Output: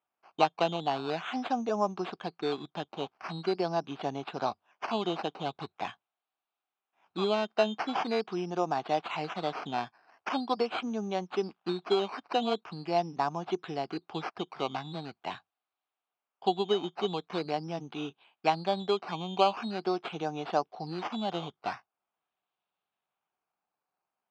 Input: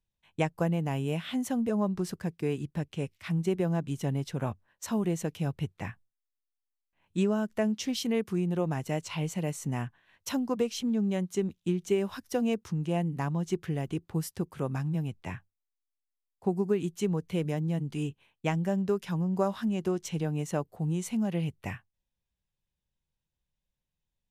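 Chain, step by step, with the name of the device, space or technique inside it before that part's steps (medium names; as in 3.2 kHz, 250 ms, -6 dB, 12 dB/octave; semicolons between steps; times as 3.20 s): circuit-bent sampling toy (decimation with a swept rate 10×, swing 60% 0.43 Hz; cabinet simulation 420–4300 Hz, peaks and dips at 520 Hz -6 dB, 750 Hz +8 dB, 1.2 kHz +3 dB, 1.9 kHz -8 dB); trim +4.5 dB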